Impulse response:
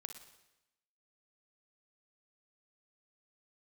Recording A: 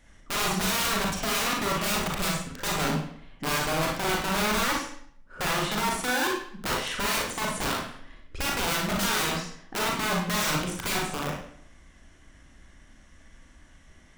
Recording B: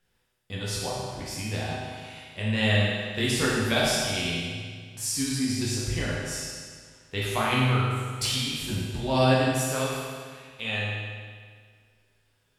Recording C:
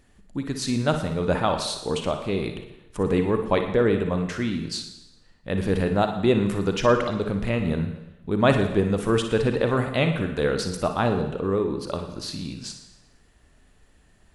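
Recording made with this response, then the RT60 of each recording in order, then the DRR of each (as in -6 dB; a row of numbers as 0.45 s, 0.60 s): C; 0.60 s, 1.8 s, 0.95 s; -2.5 dB, -6.5 dB, 5.5 dB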